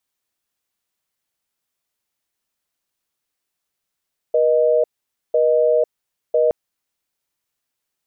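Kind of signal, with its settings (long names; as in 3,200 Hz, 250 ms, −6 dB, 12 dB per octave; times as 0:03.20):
call progress tone busy tone, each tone −15.5 dBFS 2.17 s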